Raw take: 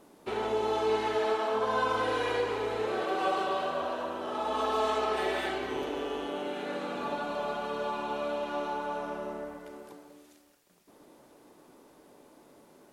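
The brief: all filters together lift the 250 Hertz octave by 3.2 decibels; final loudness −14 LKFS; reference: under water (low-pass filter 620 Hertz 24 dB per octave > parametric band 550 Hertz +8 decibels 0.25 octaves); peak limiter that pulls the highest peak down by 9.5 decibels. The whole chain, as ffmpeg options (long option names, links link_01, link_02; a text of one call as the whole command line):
ffmpeg -i in.wav -af "equalizer=frequency=250:width_type=o:gain=4,alimiter=level_in=2.5dB:limit=-24dB:level=0:latency=1,volume=-2.5dB,lowpass=frequency=620:width=0.5412,lowpass=frequency=620:width=1.3066,equalizer=frequency=550:width_type=o:width=0.25:gain=8,volume=22dB" out.wav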